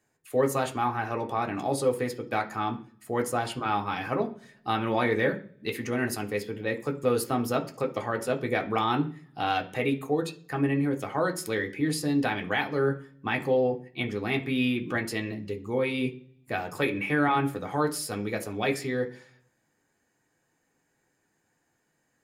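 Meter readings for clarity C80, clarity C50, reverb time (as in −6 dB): 19.5 dB, 14.5 dB, 0.50 s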